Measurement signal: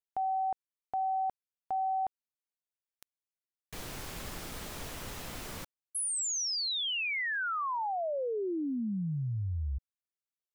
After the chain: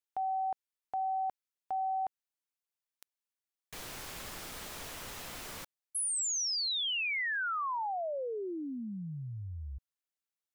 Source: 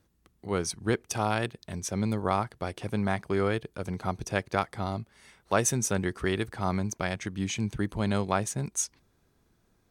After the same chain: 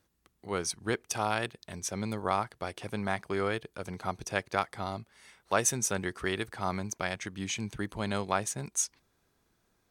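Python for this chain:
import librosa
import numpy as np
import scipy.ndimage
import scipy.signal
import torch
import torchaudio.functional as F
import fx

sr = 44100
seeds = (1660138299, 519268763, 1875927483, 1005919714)

y = fx.low_shelf(x, sr, hz=410.0, db=-8.0)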